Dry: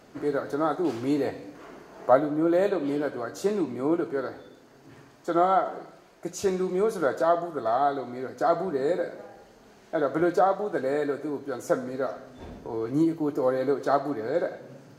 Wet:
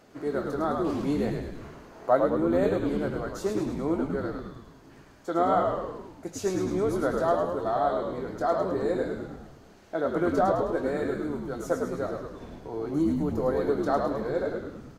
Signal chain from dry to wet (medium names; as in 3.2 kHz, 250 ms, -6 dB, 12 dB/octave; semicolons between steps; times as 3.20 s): frequency-shifting echo 105 ms, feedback 56%, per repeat -75 Hz, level -4 dB; trim -3 dB